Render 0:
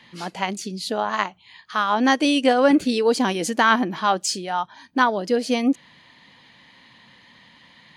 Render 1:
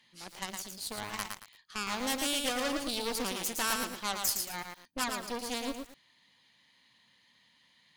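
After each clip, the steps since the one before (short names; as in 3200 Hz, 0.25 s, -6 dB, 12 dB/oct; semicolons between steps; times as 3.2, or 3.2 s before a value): added harmonics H 8 -13 dB, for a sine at -4 dBFS; pre-emphasis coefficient 0.8; lo-fi delay 0.113 s, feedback 35%, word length 7-bit, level -4 dB; gain -6 dB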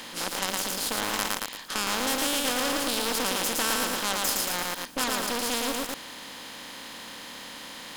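per-bin compression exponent 0.4; in parallel at -3 dB: level quantiser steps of 18 dB; on the sum: gain -2 dB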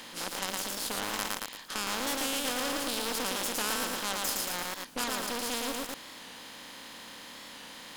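record warp 45 rpm, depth 100 cents; gain -5 dB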